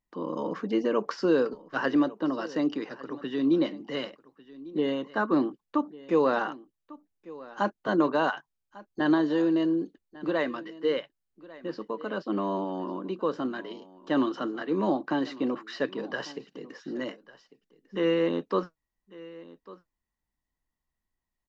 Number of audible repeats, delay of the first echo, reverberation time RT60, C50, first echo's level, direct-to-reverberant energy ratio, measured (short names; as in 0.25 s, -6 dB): 1, 1.148 s, none, none, -19.5 dB, none